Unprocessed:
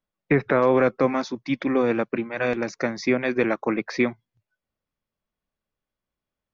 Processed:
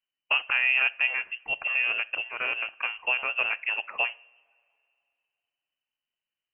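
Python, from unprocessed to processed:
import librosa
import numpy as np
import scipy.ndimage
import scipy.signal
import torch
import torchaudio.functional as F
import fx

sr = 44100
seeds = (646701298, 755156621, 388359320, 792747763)

y = fx.freq_invert(x, sr, carrier_hz=3000)
y = fx.rev_double_slope(y, sr, seeds[0], early_s=0.49, late_s=2.6, knee_db=-19, drr_db=18.0)
y = F.gain(torch.from_numpy(y), -5.5).numpy()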